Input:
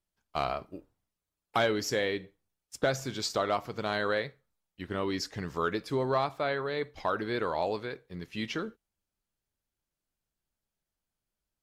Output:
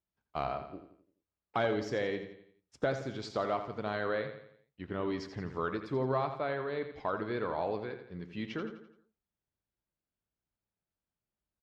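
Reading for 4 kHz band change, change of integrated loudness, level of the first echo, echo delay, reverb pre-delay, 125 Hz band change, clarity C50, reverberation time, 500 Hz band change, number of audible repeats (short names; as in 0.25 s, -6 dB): -10.0 dB, -3.5 dB, -9.5 dB, 85 ms, none, -1.5 dB, none, none, -2.5 dB, 4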